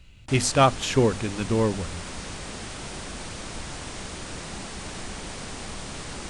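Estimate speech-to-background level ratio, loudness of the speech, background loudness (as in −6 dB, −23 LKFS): 12.5 dB, −23.5 LKFS, −36.0 LKFS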